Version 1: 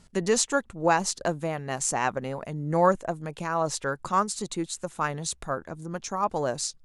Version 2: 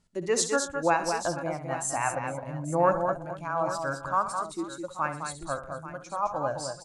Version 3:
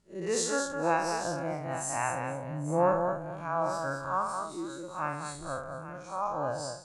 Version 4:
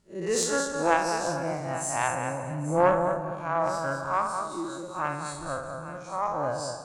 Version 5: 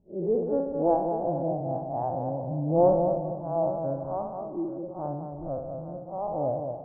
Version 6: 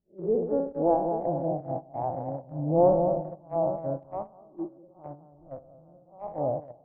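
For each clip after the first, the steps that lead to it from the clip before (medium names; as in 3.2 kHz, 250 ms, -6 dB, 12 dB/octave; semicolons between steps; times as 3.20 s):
spectral noise reduction 12 dB; on a send: multi-tap echo 65/123/211/234/460/837 ms -11/-17/-6.5/-16.5/-19.5/-13 dB; on the sum: trim -2 dB
spectral blur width 101 ms
on a send at -13.5 dB: reverberation, pre-delay 3 ms; on the sum: Chebyshev shaper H 2 -14 dB, 3 -24 dB, 6 -39 dB, 8 -39 dB, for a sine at -13 dBFS; trim +5 dB
Chebyshev low-pass 740 Hz, order 4; trim +3 dB
gate -29 dBFS, range -17 dB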